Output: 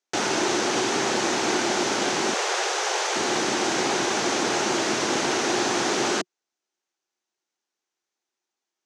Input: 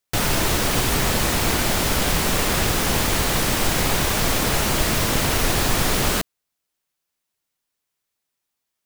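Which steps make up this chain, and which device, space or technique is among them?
television speaker (speaker cabinet 170–7100 Hz, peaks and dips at 170 Hz -8 dB, 360 Hz +10 dB, 810 Hz +6 dB, 1500 Hz +3 dB, 6200 Hz +6 dB); 2.34–3.16 steep high-pass 420 Hz 48 dB/oct; gain -3.5 dB

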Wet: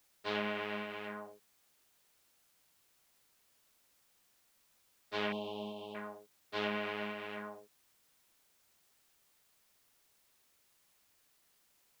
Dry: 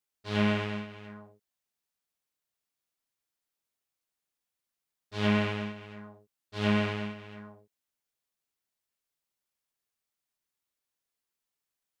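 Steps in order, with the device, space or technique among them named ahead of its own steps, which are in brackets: baby monitor (BPF 340–3600 Hz; compressor, threshold -39 dBFS, peak gain reduction 13.5 dB; white noise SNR 27 dB); 5.32–5.95 Chebyshev band-stop 920–3100 Hz, order 3; gain +6.5 dB

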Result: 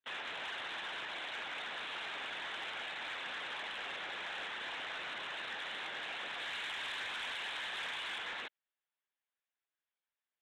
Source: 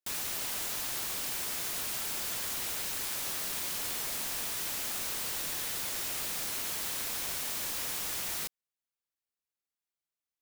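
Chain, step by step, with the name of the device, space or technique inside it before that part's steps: 6.4–8.18 tilt +2 dB/oct; talking toy (LPC vocoder at 8 kHz; HPF 410 Hz 12 dB/oct; bell 1700 Hz +5 dB 0.4 oct; soft clip -36.5 dBFS, distortion -17 dB); gain +2 dB

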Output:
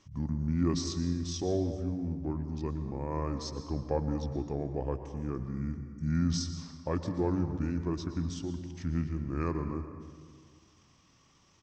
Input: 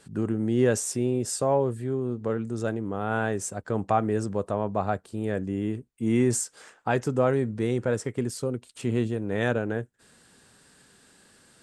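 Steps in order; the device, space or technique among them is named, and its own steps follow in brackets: monster voice (pitch shift -6.5 st; low shelf 120 Hz +5 dB; reverb RT60 1.8 s, pre-delay 0.105 s, DRR 8.5 dB); gain -8 dB

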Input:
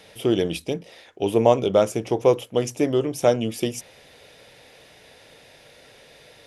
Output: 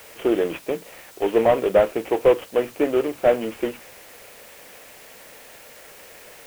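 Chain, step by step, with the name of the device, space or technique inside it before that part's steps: army field radio (BPF 340–3200 Hz; CVSD 16 kbps; white noise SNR 24 dB); gain +4 dB

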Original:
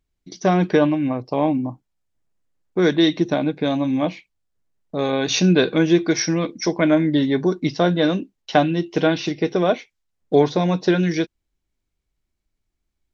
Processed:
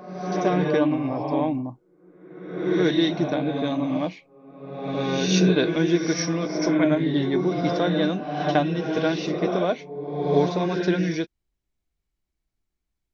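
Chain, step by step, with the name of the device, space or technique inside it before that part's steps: reverse reverb (reverse; reverb RT60 1.3 s, pre-delay 61 ms, DRR 2.5 dB; reverse); gain -5.5 dB

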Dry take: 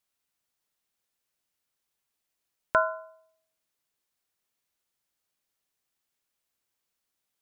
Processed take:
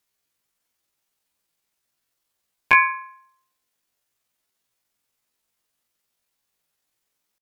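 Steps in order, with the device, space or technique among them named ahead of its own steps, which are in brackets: chipmunk voice (pitch shift +8.5 st); gain +8 dB

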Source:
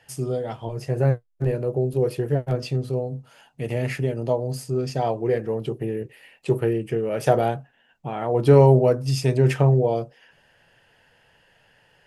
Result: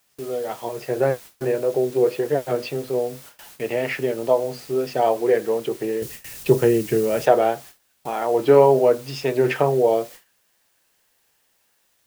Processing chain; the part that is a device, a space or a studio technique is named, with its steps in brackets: dictaphone (BPF 350–3600 Hz; AGC gain up to 6 dB; wow and flutter; white noise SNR 23 dB); gate with hold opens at -31 dBFS; 6.02–7.26 tone controls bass +14 dB, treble +8 dB

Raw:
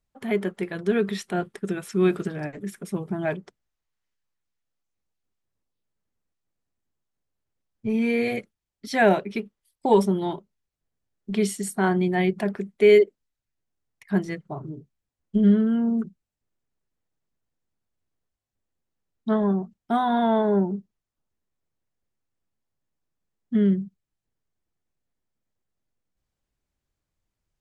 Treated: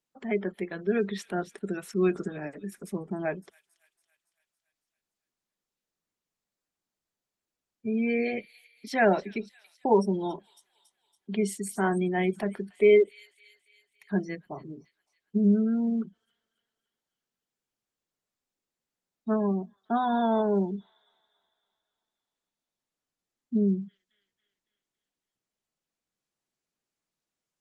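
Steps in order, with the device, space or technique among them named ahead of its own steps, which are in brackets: thin delay 0.28 s, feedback 54%, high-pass 4200 Hz, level -9 dB; 14.38–15.37 high shelf 10000 Hz -7.5 dB; noise-suppressed video call (HPF 170 Hz 24 dB/oct; spectral gate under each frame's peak -30 dB strong; gain -3.5 dB; Opus 20 kbps 48000 Hz)

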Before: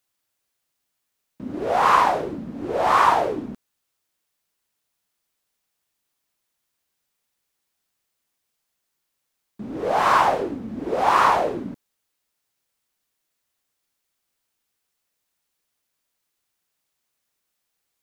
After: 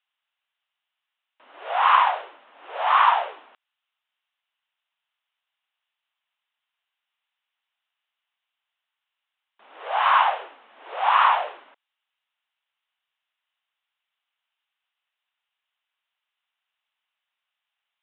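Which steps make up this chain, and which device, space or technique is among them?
musical greeting card (downsampling 8000 Hz; HPF 780 Hz 24 dB/oct; bell 2900 Hz +5.5 dB 0.31 oct)

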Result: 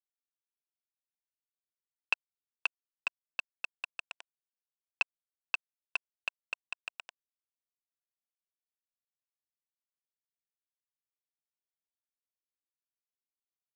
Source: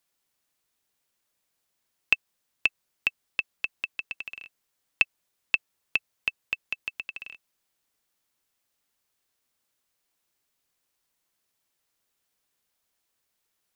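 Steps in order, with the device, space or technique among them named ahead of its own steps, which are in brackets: hand-held game console (bit-crush 4-bit; speaker cabinet 490–5500 Hz, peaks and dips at 700 Hz +5 dB, 1000 Hz +8 dB, 1500 Hz +7 dB, 2100 Hz -9 dB, 3300 Hz -4 dB); gain -6 dB

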